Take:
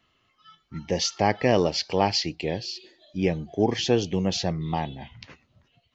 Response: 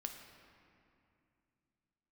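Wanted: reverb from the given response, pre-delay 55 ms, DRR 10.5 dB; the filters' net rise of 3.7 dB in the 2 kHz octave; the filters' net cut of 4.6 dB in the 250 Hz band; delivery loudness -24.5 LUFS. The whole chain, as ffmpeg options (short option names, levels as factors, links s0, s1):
-filter_complex "[0:a]equalizer=f=250:t=o:g=-7,equalizer=f=2000:t=o:g=4.5,asplit=2[s0][s1];[1:a]atrim=start_sample=2205,adelay=55[s2];[s1][s2]afir=irnorm=-1:irlink=0,volume=0.398[s3];[s0][s3]amix=inputs=2:normalize=0,volume=1.19"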